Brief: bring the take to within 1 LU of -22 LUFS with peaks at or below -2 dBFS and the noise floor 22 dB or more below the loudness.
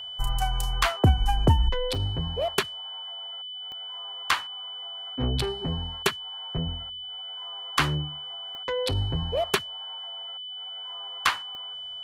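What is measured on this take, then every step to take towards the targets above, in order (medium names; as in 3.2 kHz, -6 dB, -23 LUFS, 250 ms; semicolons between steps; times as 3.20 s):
clicks found 4; steady tone 3 kHz; tone level -35 dBFS; loudness -28.5 LUFS; peak level -10.5 dBFS; loudness target -22.0 LUFS
-> de-click; band-stop 3 kHz, Q 30; trim +6.5 dB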